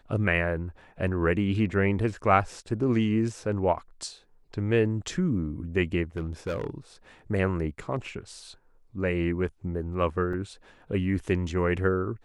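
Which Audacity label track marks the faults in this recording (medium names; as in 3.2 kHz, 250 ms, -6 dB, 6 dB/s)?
6.170000	6.700000	clipped -26 dBFS
10.330000	10.330000	dropout 3.2 ms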